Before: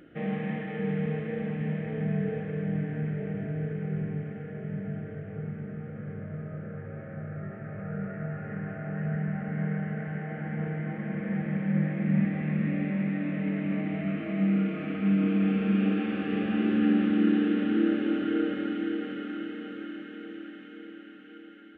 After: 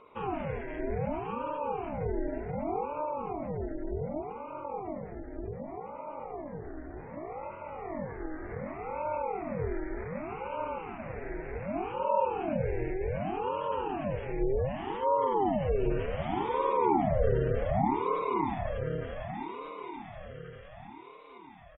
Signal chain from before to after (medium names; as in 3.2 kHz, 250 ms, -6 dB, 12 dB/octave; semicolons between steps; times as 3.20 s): 10.78–11.94 s: high-pass 230 Hz 12 dB/octave; echo from a far wall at 240 m, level -27 dB; spectral gate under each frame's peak -30 dB strong; ring modulator with a swept carrier 460 Hz, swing 65%, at 0.66 Hz